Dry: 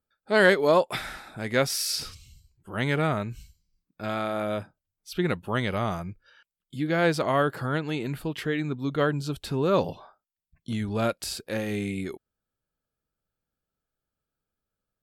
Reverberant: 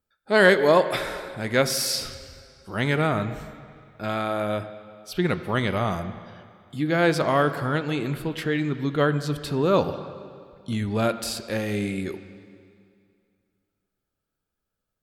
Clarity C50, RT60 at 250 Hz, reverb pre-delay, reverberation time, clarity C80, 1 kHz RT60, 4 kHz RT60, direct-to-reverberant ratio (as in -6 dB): 11.5 dB, 2.3 s, 6 ms, 2.3 s, 12.5 dB, 2.3 s, 2.1 s, 10.5 dB